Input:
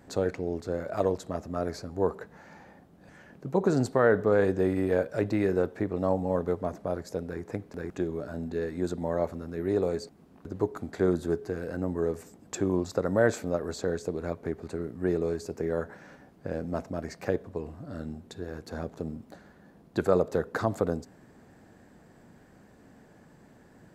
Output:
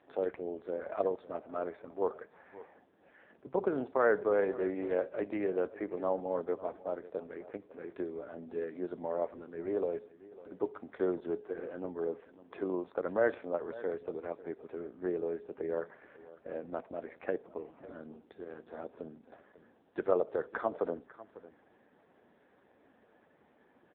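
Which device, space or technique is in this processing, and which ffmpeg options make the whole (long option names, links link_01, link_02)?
satellite phone: -af "highpass=350,lowpass=3300,aecho=1:1:548:0.133,volume=-3dB" -ar 8000 -c:a libopencore_amrnb -b:a 5900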